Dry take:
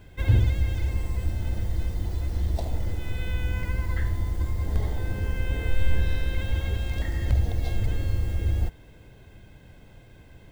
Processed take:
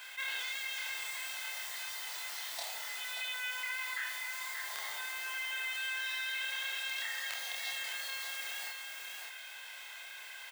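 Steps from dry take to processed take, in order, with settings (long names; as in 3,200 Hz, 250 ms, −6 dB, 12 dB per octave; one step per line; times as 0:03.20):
Bessel high-pass filter 1,600 Hz, order 4
double-tracking delay 28 ms −2 dB
single-tap delay 582 ms −8.5 dB
envelope flattener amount 50%
level +2 dB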